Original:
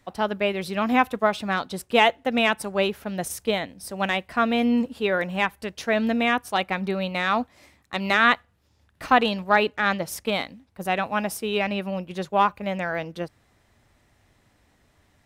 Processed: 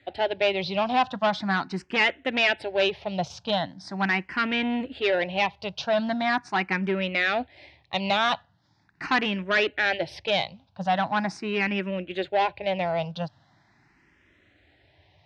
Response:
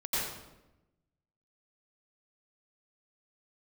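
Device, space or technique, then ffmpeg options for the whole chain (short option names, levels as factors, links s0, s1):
barber-pole phaser into a guitar amplifier: -filter_complex "[0:a]asplit=2[s0][s1];[s1]afreqshift=0.41[s2];[s0][s2]amix=inputs=2:normalize=1,asoftclip=type=tanh:threshold=0.0794,highpass=99,equalizer=f=230:t=q:w=4:g=-9,equalizer=f=470:t=q:w=4:g=-9,equalizer=f=1200:t=q:w=4:g=-8,lowpass=f=4600:w=0.5412,lowpass=f=4600:w=1.3066,volume=2.37"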